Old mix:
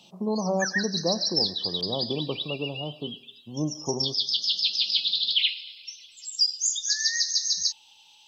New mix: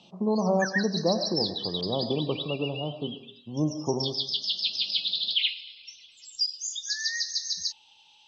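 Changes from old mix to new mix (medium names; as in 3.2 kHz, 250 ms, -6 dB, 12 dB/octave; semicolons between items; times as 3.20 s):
speech: send +11.0 dB; master: add distance through air 110 m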